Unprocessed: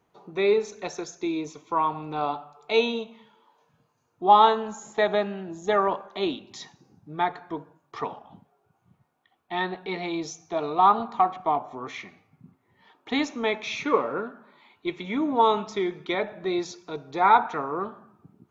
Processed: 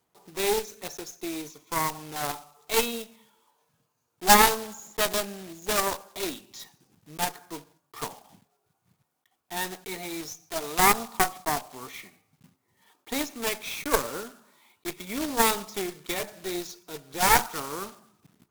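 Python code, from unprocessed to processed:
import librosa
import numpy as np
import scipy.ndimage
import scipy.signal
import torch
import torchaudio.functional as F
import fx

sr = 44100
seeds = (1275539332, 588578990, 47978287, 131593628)

y = fx.block_float(x, sr, bits=3)
y = fx.high_shelf(y, sr, hz=4600.0, db=8.5)
y = fx.cheby_harmonics(y, sr, harmonics=(3, 4), levels_db=(-16, -11), full_scale_db=-2.0)
y = y * 10.0 ** (-1.0 / 20.0)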